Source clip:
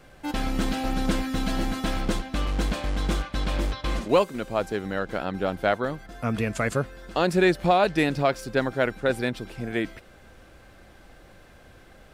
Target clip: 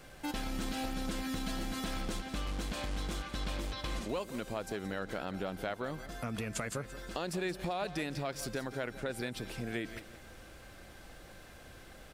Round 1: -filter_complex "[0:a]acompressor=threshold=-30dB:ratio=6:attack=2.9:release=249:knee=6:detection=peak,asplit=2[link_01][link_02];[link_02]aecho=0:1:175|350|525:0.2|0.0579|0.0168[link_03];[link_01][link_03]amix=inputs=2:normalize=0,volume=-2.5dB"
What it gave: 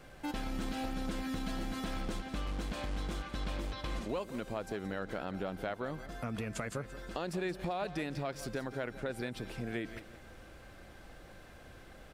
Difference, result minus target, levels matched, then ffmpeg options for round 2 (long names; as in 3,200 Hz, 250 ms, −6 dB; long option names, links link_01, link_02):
8,000 Hz band −5.0 dB
-filter_complex "[0:a]acompressor=threshold=-30dB:ratio=6:attack=2.9:release=249:knee=6:detection=peak,highshelf=frequency=3300:gain=7,asplit=2[link_01][link_02];[link_02]aecho=0:1:175|350|525:0.2|0.0579|0.0168[link_03];[link_01][link_03]amix=inputs=2:normalize=0,volume=-2.5dB"